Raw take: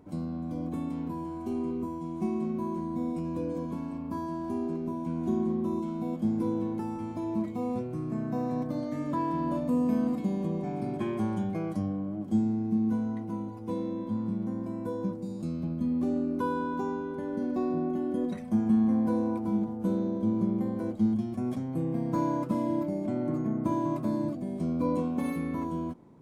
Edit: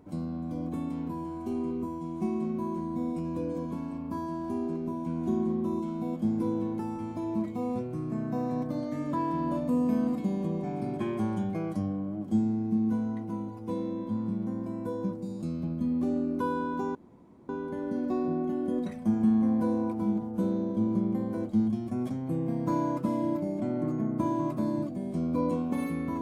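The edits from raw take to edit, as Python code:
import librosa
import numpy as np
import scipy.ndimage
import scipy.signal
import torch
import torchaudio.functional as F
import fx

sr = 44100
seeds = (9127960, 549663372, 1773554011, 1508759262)

y = fx.edit(x, sr, fx.insert_room_tone(at_s=16.95, length_s=0.54), tone=tone)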